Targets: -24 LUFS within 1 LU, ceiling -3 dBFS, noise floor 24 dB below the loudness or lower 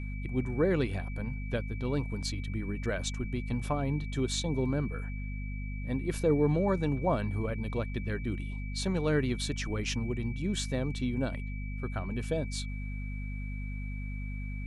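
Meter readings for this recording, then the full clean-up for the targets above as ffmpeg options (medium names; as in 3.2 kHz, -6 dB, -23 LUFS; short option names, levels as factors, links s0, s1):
hum 50 Hz; highest harmonic 250 Hz; hum level -34 dBFS; steady tone 2.3 kHz; tone level -47 dBFS; loudness -33.0 LUFS; peak level -15.5 dBFS; loudness target -24.0 LUFS
-> -af "bandreject=f=50:t=h:w=6,bandreject=f=100:t=h:w=6,bandreject=f=150:t=h:w=6,bandreject=f=200:t=h:w=6,bandreject=f=250:t=h:w=6"
-af "bandreject=f=2300:w=30"
-af "volume=2.82"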